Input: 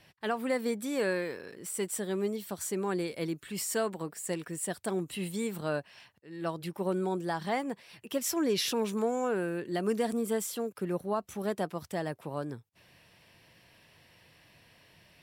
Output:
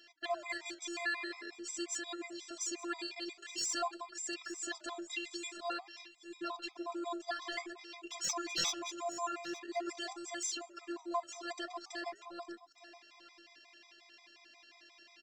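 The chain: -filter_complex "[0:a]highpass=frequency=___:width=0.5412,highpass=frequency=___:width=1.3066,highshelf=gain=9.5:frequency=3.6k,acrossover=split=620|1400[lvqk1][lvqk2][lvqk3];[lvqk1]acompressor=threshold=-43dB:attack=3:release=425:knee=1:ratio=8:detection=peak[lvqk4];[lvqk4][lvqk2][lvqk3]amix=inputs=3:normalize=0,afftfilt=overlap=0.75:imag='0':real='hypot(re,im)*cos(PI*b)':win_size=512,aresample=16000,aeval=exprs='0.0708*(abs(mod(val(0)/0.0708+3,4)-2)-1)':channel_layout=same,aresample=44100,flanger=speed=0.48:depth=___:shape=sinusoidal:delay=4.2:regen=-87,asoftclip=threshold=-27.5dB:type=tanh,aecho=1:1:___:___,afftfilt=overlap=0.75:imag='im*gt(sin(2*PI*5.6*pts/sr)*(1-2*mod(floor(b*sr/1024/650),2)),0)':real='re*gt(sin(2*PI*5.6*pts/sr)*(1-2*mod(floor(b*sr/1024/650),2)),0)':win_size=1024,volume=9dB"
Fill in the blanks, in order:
220, 220, 8.9, 870, 0.15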